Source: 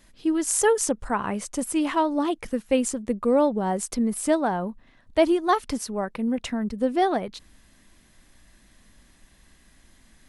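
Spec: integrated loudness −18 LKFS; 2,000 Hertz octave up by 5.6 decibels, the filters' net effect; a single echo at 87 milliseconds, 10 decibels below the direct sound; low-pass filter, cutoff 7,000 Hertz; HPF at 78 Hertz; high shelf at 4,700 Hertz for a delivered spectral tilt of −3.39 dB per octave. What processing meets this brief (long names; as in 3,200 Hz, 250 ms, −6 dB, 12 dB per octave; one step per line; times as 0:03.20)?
high-pass filter 78 Hz
low-pass filter 7,000 Hz
parametric band 2,000 Hz +6 dB
high-shelf EQ 4,700 Hz +6.5 dB
single-tap delay 87 ms −10 dB
level +5.5 dB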